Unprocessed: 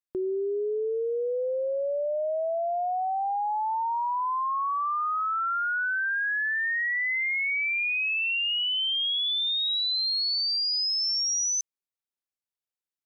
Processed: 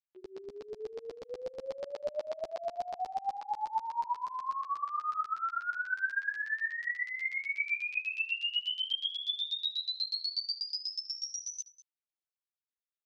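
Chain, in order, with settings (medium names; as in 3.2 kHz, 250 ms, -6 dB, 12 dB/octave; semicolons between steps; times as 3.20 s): LFO band-pass saw down 8.2 Hz 590–4900 Hz; delay 198 ms -18.5 dB; three-phase chorus; trim +1.5 dB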